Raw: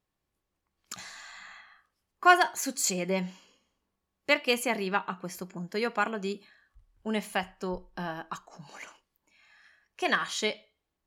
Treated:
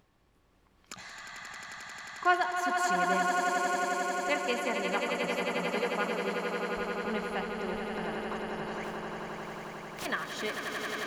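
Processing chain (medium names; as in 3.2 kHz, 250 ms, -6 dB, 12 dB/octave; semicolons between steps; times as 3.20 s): 8.83–10.05 s: spectral contrast reduction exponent 0.13; low-pass 2.9 kHz 6 dB/octave; gate with hold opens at -49 dBFS; upward compressor, threshold -31 dBFS; on a send: echo with a slow build-up 89 ms, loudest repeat 8, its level -7 dB; on the sum: trim -5.5 dB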